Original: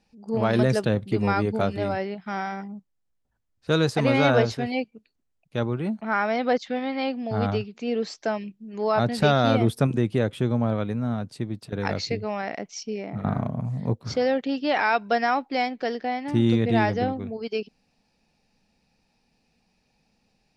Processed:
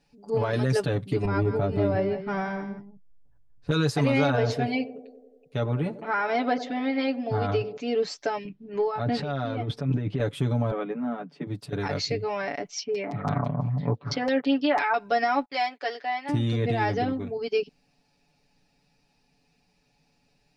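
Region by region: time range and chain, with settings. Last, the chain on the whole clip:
1.25–3.71 s: tilt EQ -3 dB/octave + compression 3:1, threshold -20 dBFS + delay 172 ms -11 dB
4.30–7.77 s: treble shelf 5.6 kHz -5 dB + band-passed feedback delay 93 ms, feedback 72%, band-pass 420 Hz, level -13.5 dB
8.45–10.20 s: compressor with a negative ratio -28 dBFS + distance through air 200 m
10.71–11.47 s: steep high-pass 150 Hz 96 dB/octave + distance through air 270 m + band-stop 4 kHz, Q 5.1
12.78–14.94 s: high-pass 97 Hz + LFO low-pass saw down 6 Hz 890–5300 Hz
15.45–16.29 s: high-pass 660 Hz + peaking EQ 5.8 kHz -4.5 dB 0.22 oct + gate -53 dBFS, range -24 dB
whole clip: peak limiter -16 dBFS; comb 7 ms, depth 91%; trim -1.5 dB

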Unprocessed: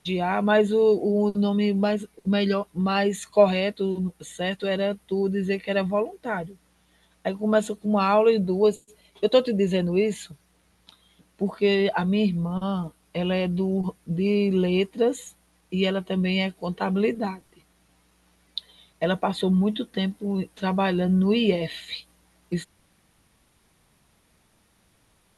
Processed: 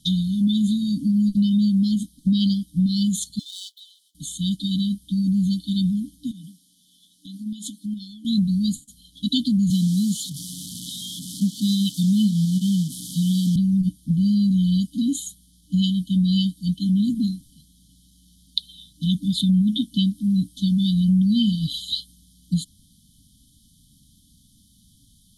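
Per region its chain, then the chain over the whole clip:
3.39–4.15 s: median filter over 9 samples + inverse Chebyshev high-pass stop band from 310 Hz, stop band 80 dB + treble shelf 5.8 kHz -8 dB
6.31–8.25 s: high-pass 300 Hz + compression 4:1, threshold -32 dBFS
9.70–13.56 s: one-bit delta coder 64 kbps, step -34.5 dBFS + high-pass 120 Hz 24 dB/octave
whole clip: FFT band-reject 300–3000 Hz; compression 3:1, threshold -26 dBFS; trim +9 dB

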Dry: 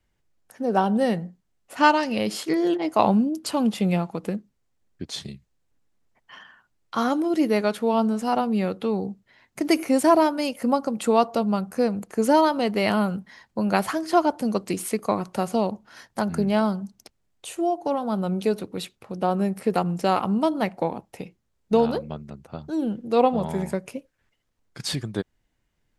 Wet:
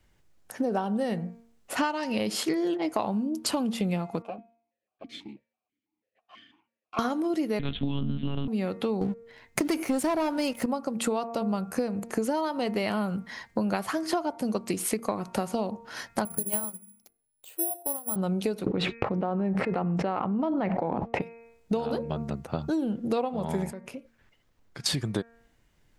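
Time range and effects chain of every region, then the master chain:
4.22–6.99 s: comb filter that takes the minimum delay 9.4 ms + stepped vowel filter 6.1 Hz
7.59–8.48 s: FFT filter 150 Hz 0 dB, 250 Hz +9 dB, 370 Hz -7 dB, 640 Hz -13 dB, 2.1 kHz -3 dB, 3.3 kHz +14 dB, 5 kHz +1 dB + monotone LPC vocoder at 8 kHz 140 Hz
9.01–10.66 s: bass shelf 62 Hz +11.5 dB + waveshaping leveller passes 2
16.25–18.16 s: hum notches 50/100/150/200/250/300/350/400 Hz + careless resampling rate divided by 4×, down filtered, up zero stuff + upward expansion 2.5:1, over -26 dBFS
18.66–21.22 s: expander -45 dBFS + low-pass 2 kHz + level flattener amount 100%
23.70–24.86 s: peaking EQ 9.3 kHz -5.5 dB 1.6 oct + compression 3:1, threshold -47 dBFS
whole clip: de-hum 231.1 Hz, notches 11; compression 16:1, threshold -32 dBFS; trim +7.5 dB

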